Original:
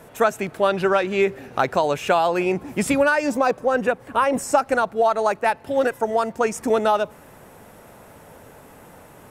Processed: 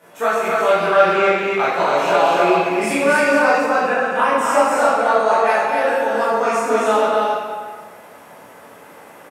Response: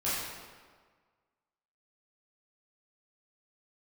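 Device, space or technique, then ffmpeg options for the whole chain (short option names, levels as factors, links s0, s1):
stadium PA: -filter_complex "[0:a]highpass=220,equalizer=f=2300:t=o:w=2.8:g=4,aecho=1:1:218.7|271.1:0.282|0.708[s0];[1:a]atrim=start_sample=2205[s1];[s0][s1]afir=irnorm=-1:irlink=0,volume=0.447"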